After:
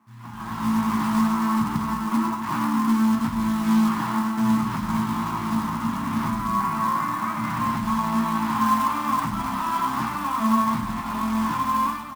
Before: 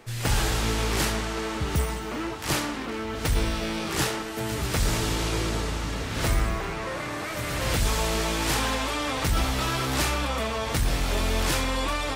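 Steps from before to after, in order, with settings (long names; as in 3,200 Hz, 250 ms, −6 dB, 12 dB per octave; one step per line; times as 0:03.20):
brickwall limiter −20.5 dBFS, peak gain reduction 6.5 dB
automatic gain control gain up to 16 dB
pair of resonant band-passes 480 Hz, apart 2.2 octaves
floating-point word with a short mantissa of 2 bits
single-tap delay 100 ms −10 dB
convolution reverb RT60 0.25 s, pre-delay 6 ms, DRR 5 dB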